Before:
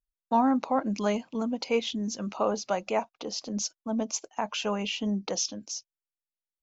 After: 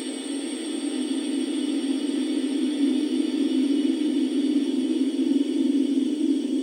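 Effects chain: spectrum inverted on a logarithmic axis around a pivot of 1.3 kHz; in parallel at -4 dB: crossover distortion -50 dBFS; on the sum: Paulstretch 36×, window 0.50 s, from 5.27 s; trim -2 dB

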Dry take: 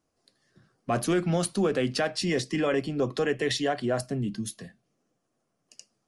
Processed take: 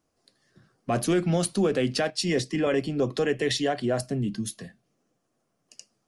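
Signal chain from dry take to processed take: dynamic bell 1.2 kHz, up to -4 dB, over -42 dBFS, Q 1.2; 2.10–2.67 s: three bands expanded up and down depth 70%; trim +2 dB

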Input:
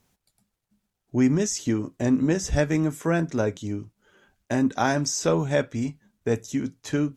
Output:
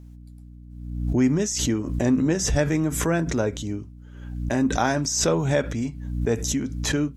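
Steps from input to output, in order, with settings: hum 60 Hz, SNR 18 dB; swell ahead of each attack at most 48 dB/s

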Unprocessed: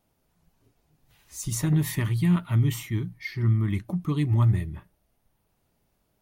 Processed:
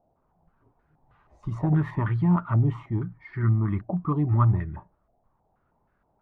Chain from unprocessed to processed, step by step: step-sequenced low-pass 6.3 Hz 710–1500 Hz

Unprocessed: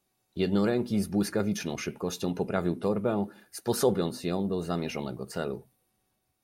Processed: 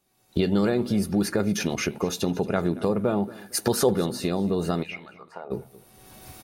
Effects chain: recorder AGC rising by 35 dB/s; 4.82–5.50 s: band-pass filter 2.9 kHz -> 720 Hz, Q 4; on a send: feedback delay 228 ms, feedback 34%, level -20 dB; on the sum: trim +3 dB

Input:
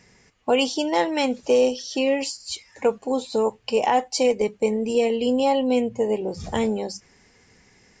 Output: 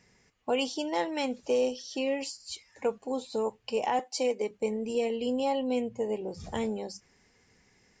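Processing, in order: 3.99–4.51 s: high-pass 220 Hz 24 dB/octave; trim -8.5 dB

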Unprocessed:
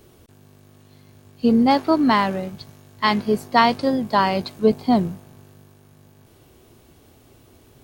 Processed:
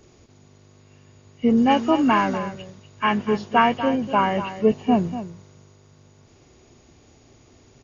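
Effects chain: knee-point frequency compression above 1.2 kHz 1.5:1; 1.57–2.38 s: treble shelf 4.5 kHz +11 dB; delay 242 ms -12 dB; trim -1.5 dB

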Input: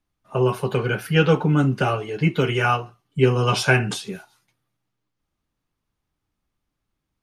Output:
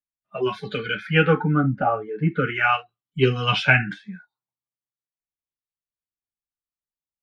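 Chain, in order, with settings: spectral noise reduction 27 dB; Chebyshev shaper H 3 -31 dB, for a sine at -3.5 dBFS; LFO low-pass sine 0.39 Hz 940–3800 Hz; trim -1 dB

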